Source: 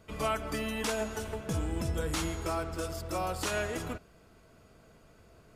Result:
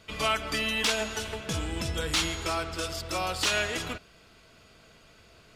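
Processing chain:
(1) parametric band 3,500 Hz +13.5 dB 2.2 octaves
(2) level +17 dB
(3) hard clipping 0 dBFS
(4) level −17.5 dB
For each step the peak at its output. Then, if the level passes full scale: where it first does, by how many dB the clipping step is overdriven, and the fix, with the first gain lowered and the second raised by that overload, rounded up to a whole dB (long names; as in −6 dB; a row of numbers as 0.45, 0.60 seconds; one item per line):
−12.5, +4.5, 0.0, −17.5 dBFS
step 2, 4.5 dB
step 2 +12 dB, step 4 −12.5 dB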